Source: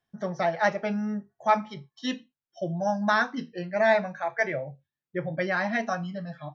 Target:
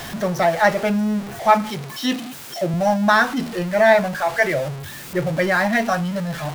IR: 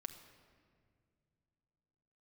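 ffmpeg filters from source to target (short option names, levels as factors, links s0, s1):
-filter_complex "[0:a]aeval=exprs='val(0)+0.5*0.0224*sgn(val(0))':c=same,asettb=1/sr,asplit=3[s0][s1][s2];[s0]atrim=end=1.694[s3];[s1]atrim=start=1.69:end=2.74,asetpts=PTS-STARTPTS,afade=t=in:d=0.004:c=qsin,afade=t=out:st=1.046:d=0.004:c=qsin,highpass=130[s4];[s2]atrim=start=2.736[s5];[s3][s4]acrossfade=d=0.004:c1=hsin:c2=qsin[s6];[s6][s5]acrossfade=d=0.004:c1=qsin:c2=hsin,volume=2.24"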